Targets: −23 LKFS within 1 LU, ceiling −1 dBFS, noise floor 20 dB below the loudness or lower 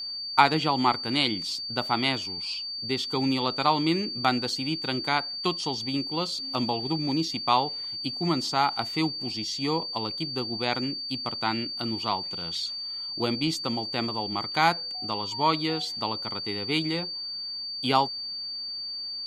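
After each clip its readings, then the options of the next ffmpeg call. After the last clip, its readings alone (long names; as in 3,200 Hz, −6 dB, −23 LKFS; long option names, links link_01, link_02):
interfering tone 4,600 Hz; level of the tone −32 dBFS; integrated loudness −27.0 LKFS; sample peak −3.0 dBFS; target loudness −23.0 LKFS
→ -af "bandreject=frequency=4600:width=30"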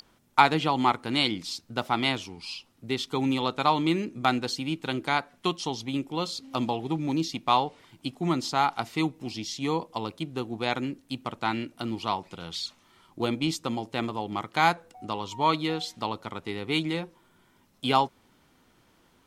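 interfering tone none found; integrated loudness −28.5 LKFS; sample peak −3.5 dBFS; target loudness −23.0 LKFS
→ -af "volume=5.5dB,alimiter=limit=-1dB:level=0:latency=1"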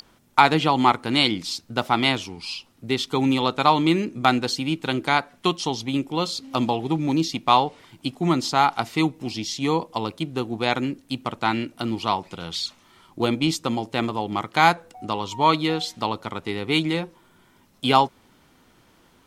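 integrated loudness −23.0 LKFS; sample peak −1.0 dBFS; background noise floor −58 dBFS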